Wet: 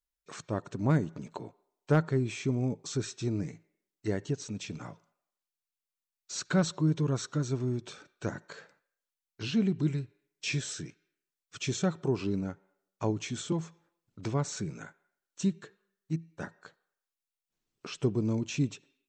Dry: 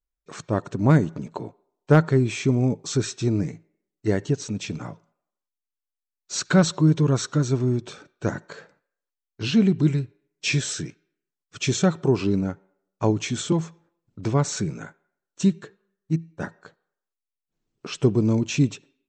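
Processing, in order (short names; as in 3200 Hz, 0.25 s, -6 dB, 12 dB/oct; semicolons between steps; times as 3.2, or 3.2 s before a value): mismatched tape noise reduction encoder only; gain -9 dB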